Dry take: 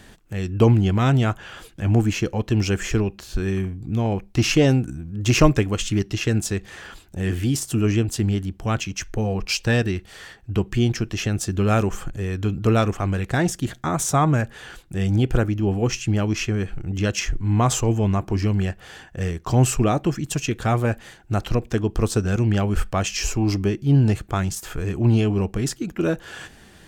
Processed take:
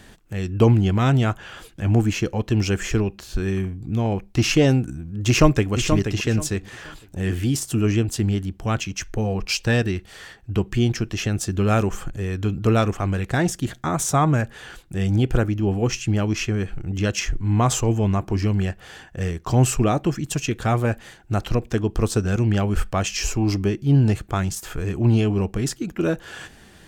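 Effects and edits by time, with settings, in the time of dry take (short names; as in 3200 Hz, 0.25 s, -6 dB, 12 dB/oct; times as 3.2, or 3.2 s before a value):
5.28–5.72 echo throw 0.48 s, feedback 25%, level -7 dB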